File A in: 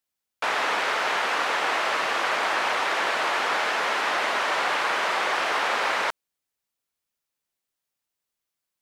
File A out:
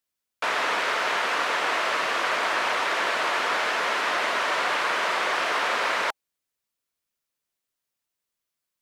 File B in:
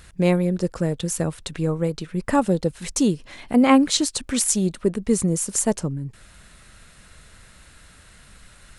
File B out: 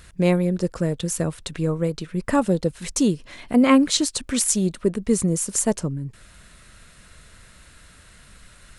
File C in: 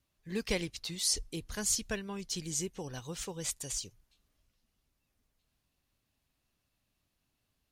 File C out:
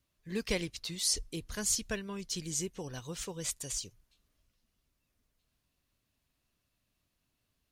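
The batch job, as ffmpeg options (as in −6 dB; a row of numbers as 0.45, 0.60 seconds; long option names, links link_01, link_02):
-af "bandreject=frequency=810:width=12"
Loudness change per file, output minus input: 0.0, 0.0, 0.0 LU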